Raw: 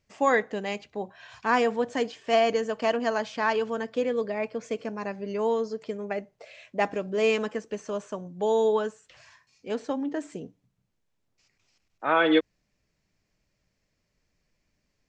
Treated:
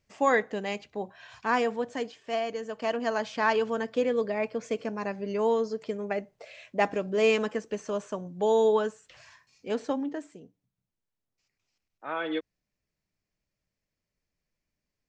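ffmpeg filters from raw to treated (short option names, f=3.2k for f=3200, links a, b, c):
-af "volume=9dB,afade=t=out:st=1.17:d=1.35:silence=0.375837,afade=t=in:st=2.52:d=0.92:silence=0.316228,afade=t=out:st=9.92:d=0.41:silence=0.281838"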